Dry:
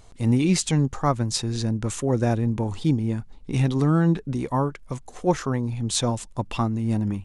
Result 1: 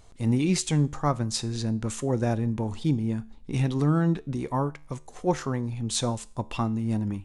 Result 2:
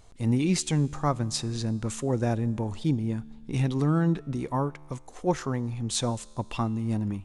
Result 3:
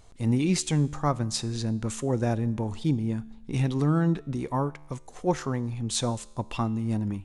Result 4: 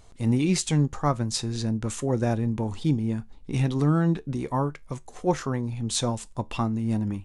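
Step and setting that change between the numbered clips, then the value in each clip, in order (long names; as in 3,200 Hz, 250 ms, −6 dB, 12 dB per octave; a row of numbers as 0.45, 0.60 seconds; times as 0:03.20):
tuned comb filter, decay: 0.45, 2.2, 1, 0.2 seconds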